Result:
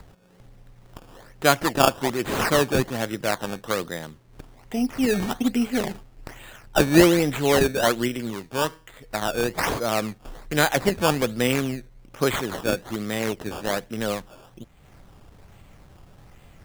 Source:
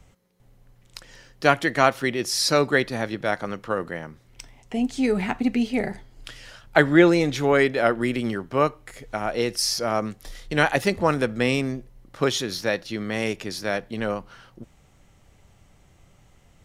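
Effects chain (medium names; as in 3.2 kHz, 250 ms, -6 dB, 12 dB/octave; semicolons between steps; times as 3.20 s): upward compressor, threshold -40 dBFS; decimation with a swept rate 15×, swing 100% 1.2 Hz; 8.08–9.11 s: feedback comb 160 Hz, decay 0.44 s, harmonics all, mix 40%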